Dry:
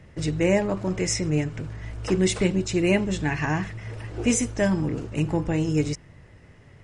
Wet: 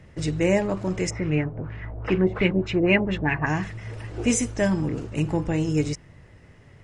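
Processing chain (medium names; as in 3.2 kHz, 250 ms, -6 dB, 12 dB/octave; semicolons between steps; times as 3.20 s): 1.09–3.45 s: LFO low-pass sine 1.7 Hz -> 6.2 Hz 630–2800 Hz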